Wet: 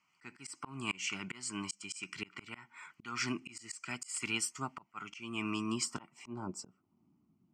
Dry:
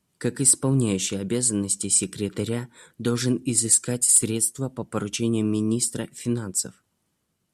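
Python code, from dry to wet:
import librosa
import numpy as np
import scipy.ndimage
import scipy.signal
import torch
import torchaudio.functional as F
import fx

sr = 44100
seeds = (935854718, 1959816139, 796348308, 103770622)

y = fx.fixed_phaser(x, sr, hz=2500.0, stages=8)
y = fx.filter_sweep_bandpass(y, sr, from_hz=1800.0, to_hz=270.0, start_s=5.65, end_s=7.06, q=1.9)
y = fx.auto_swell(y, sr, attack_ms=356.0)
y = F.gain(torch.from_numpy(y), 13.0).numpy()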